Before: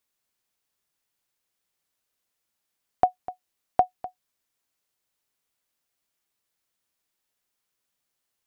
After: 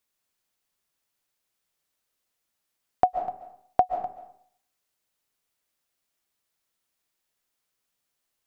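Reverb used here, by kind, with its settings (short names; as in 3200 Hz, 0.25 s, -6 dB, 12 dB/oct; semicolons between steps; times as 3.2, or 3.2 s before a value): digital reverb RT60 0.6 s, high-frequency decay 0.7×, pre-delay 0.1 s, DRR 7.5 dB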